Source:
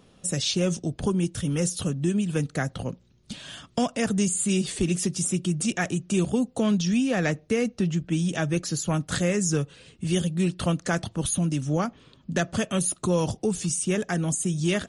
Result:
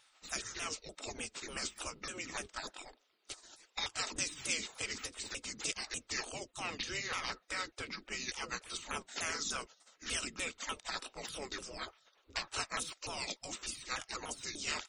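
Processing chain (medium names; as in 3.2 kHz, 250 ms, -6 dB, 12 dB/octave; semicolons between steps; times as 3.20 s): sawtooth pitch modulation -7.5 st, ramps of 297 ms; spectral gate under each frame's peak -20 dB weak; small resonant body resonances 1.3/3.7 kHz, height 8 dB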